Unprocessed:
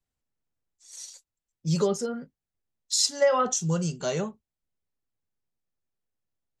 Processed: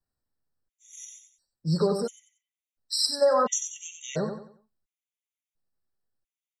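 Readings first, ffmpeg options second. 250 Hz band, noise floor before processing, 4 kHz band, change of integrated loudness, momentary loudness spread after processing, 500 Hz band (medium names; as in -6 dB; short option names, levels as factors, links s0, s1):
-2.0 dB, under -85 dBFS, +0.5 dB, -0.5 dB, 21 LU, +0.5 dB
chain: -af "aecho=1:1:92|184|276|368:0.473|0.156|0.0515|0.017,afftfilt=real='re*gt(sin(2*PI*0.72*pts/sr)*(1-2*mod(floor(b*sr/1024/1900),2)),0)':imag='im*gt(sin(2*PI*0.72*pts/sr)*(1-2*mod(floor(b*sr/1024/1900),2)),0)':win_size=1024:overlap=0.75"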